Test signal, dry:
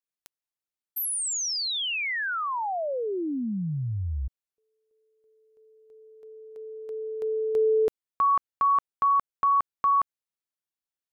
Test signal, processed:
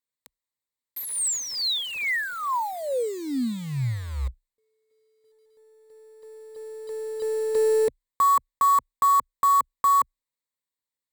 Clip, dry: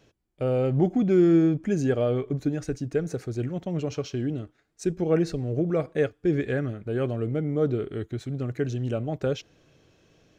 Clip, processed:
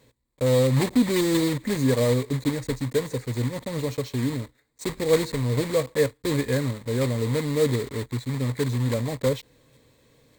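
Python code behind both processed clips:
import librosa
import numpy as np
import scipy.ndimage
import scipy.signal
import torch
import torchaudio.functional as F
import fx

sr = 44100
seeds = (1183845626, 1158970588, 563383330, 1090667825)

y = fx.block_float(x, sr, bits=3)
y = fx.ripple_eq(y, sr, per_octave=1.0, db=10)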